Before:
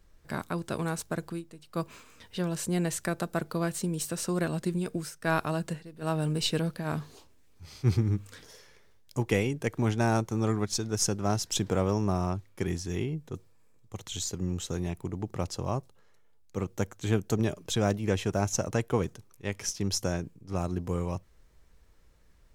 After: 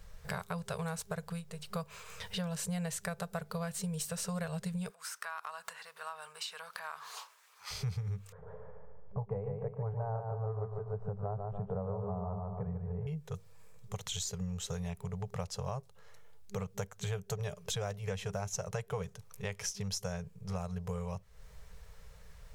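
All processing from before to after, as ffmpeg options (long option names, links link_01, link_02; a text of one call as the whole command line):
ffmpeg -i in.wav -filter_complex "[0:a]asettb=1/sr,asplit=3[link_01][link_02][link_03];[link_01]atrim=end=4.904[link_04];[link_02]atrim=start=4.9:end=7.71,asetpts=PTS-STARTPTS,afade=type=in:duration=0.004:curve=qsin,afade=type=out:start_time=2.806:duration=0.004:curve=qsin,acompressor=threshold=-43dB:ratio=6:attack=3.2:release=140:knee=1:detection=peak,highpass=frequency=1100:width_type=q:width=2.6,aeval=exprs='0.0251*(abs(mod(val(0)/0.0251+3,4)-2)-1)':channel_layout=same[link_05];[link_03]atrim=start=7.706[link_06];[link_04][link_05]acrossfade=duration=0.004:curve1=hsin:curve2=qsin[link_07];[link_07][link_06]acrossfade=duration=0.004:curve1=qsin:curve2=hsin,asettb=1/sr,asplit=3[link_08][link_09][link_10];[link_08]atrim=end=8.324[link_11];[link_09]atrim=start=8.32:end=13.07,asetpts=PTS-STARTPTS,afade=type=in:duration=0.004:curve=qsin,afade=type=out:start_time=4.746:duration=0.004:curve=qsin,lowpass=frequency=1000:width=0.5412,lowpass=frequency=1000:width=1.3066,aecho=1:1:147|294|441|588|735:0.531|0.234|0.103|0.0452|0.0199,atrim=end_sample=209475[link_12];[link_10]atrim=start=13.066[link_13];[link_11][link_12]acrossfade=duration=0.004:curve1=hsin:curve2=qsin[link_14];[link_14][link_13]acrossfade=duration=0.004:curve1=qsin:curve2=hsin,afftfilt=real='re*(1-between(b*sr/4096,200,400))':imag='im*(1-between(b*sr/4096,200,400))':win_size=4096:overlap=0.75,acompressor=threshold=-46dB:ratio=4,volume=8.5dB" out.wav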